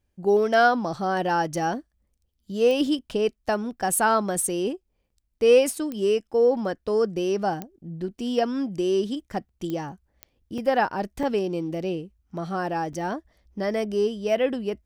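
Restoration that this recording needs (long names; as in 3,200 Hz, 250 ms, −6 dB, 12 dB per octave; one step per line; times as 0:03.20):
click removal
repair the gap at 0:05.10/0:09.49/0:10.58/0:11.23/0:12.30/0:12.93, 3.3 ms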